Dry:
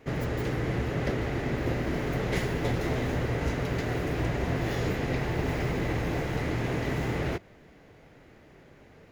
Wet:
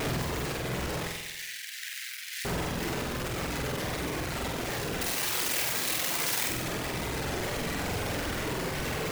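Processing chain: infinite clipping; 1.07–2.45 steep high-pass 1700 Hz 48 dB/oct; reverb removal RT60 1.5 s; 5.01–6.5 tilt +3.5 dB/oct; flutter echo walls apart 8.1 m, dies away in 0.87 s; gain -1.5 dB

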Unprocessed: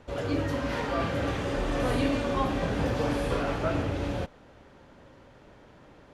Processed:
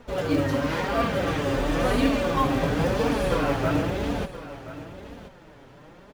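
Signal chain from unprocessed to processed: flange 0.97 Hz, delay 4.1 ms, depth 3.6 ms, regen +20%; in parallel at -5 dB: short-mantissa float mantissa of 2-bit; on the sum: echo 1.026 s -14.5 dB; gain +4 dB

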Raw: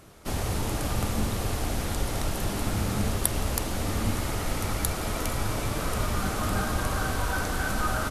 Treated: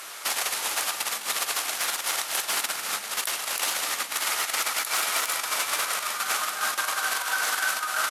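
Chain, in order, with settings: negative-ratio compressor -31 dBFS, ratio -0.5; sine folder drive 6 dB, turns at -14.5 dBFS; HPF 1300 Hz 12 dB/oct; limiter -19.5 dBFS, peak gain reduction 7.5 dB; on a send: echo 0.207 s -13 dB; on the sum: gain +4.5 dB

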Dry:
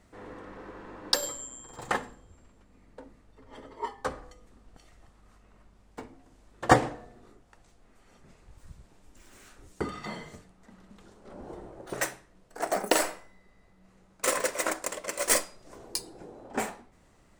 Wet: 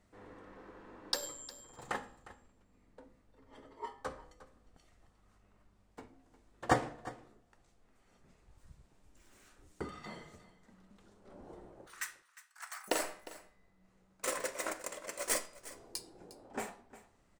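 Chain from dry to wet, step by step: 11.87–12.88 steep high-pass 1100 Hz 36 dB/oct; flange 0.18 Hz, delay 9.8 ms, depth 6.7 ms, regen +83%; echo 0.356 s -17 dB; gain -4.5 dB

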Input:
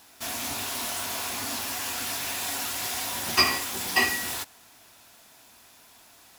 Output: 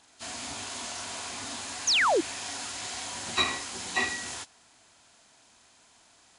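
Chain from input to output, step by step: nonlinear frequency compression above 2500 Hz 1.5:1; 1.87–2.21 painted sound fall 290–7100 Hz -18 dBFS; 1.39–3.07 band noise 1100–6700 Hz -58 dBFS; gain -5 dB

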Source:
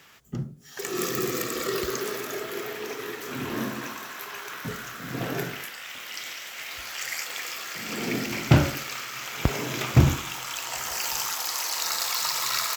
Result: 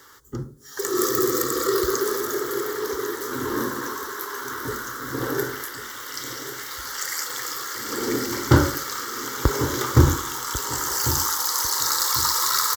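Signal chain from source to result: fixed phaser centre 680 Hz, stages 6; feedback echo 1.096 s, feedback 32%, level -12.5 dB; gain +7.5 dB

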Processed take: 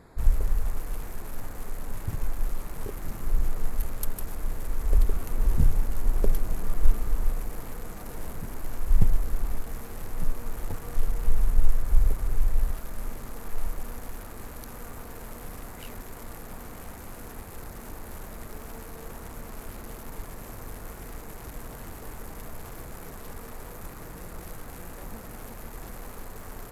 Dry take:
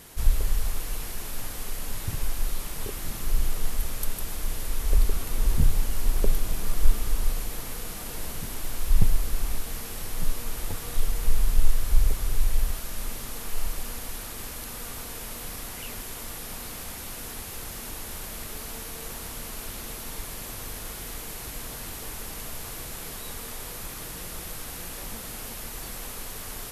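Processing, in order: Wiener smoothing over 15 samples

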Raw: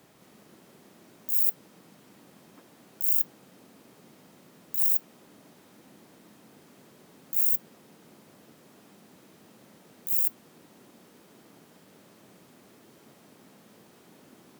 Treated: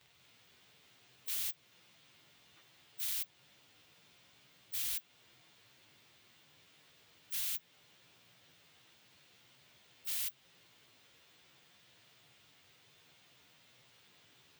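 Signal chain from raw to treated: pitch shift by moving bins +2 st; bell 12000 Hz -13 dB 1.2 oct; compressor 1.5:1, threshold -40 dBFS, peak gain reduction 5.5 dB; wrapped overs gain 34.5 dB; EQ curve 120 Hz 0 dB, 220 Hz -20 dB, 1200 Hz -7 dB, 3300 Hz +7 dB, 5300 Hz +3 dB

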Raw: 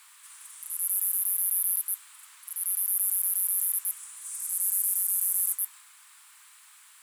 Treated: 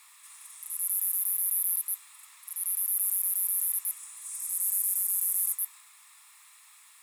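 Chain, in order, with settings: notch comb 1500 Hz

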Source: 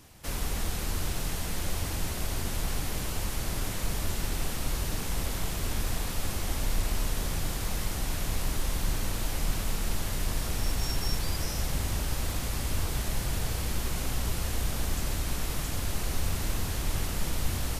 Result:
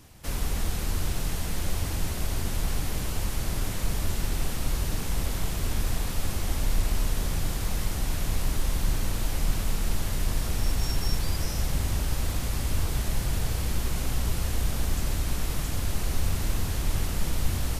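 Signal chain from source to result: low shelf 230 Hz +4 dB

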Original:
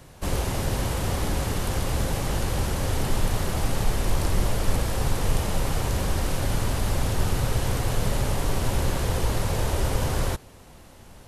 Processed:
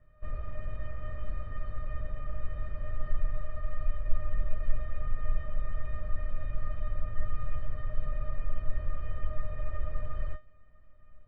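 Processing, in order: 3.41–4.08 minimum comb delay 1.7 ms; LPF 1700 Hz 24 dB/oct; bell 700 Hz -12.5 dB 1.5 oct; resonator 610 Hz, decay 0.2 s, harmonics all, mix 100%; gain +9.5 dB

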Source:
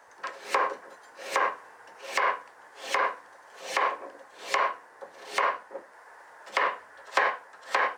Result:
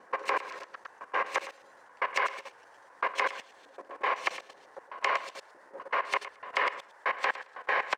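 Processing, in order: slices in reverse order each 0.126 s, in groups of 7; high shelf 11000 Hz -8 dB; feedback echo 0.11 s, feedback 17%, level -7 dB; level quantiser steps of 14 dB; dynamic EQ 2500 Hz, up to +5 dB, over -47 dBFS, Q 1.8

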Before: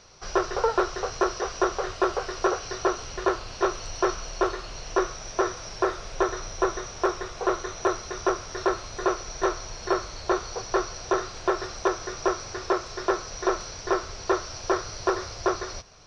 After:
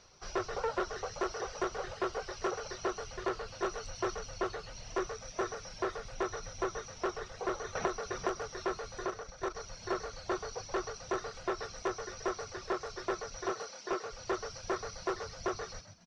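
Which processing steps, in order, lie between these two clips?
reverb removal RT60 0.91 s; 9.06–9.55 level quantiser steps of 12 dB; 13.46–14.11 HPF 300 Hz -> 140 Hz 24 dB/oct; soft clip -19 dBFS, distortion -13 dB; frequency-shifting echo 0.13 s, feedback 31%, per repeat +74 Hz, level -9 dB; 7.75–8.48 three-band squash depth 100%; gain -7 dB

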